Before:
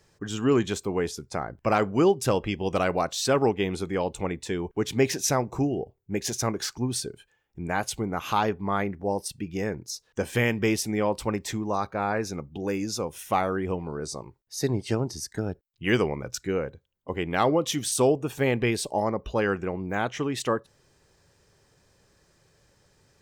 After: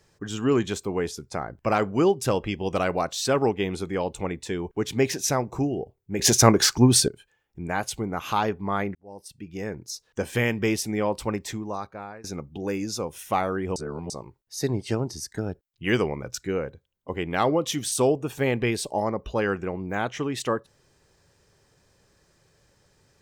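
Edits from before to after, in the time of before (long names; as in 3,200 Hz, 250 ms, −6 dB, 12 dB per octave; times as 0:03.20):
0:06.19–0:07.08: clip gain +11.5 dB
0:08.95–0:09.94: fade in
0:11.35–0:12.24: fade out, to −21.5 dB
0:13.76–0:14.10: reverse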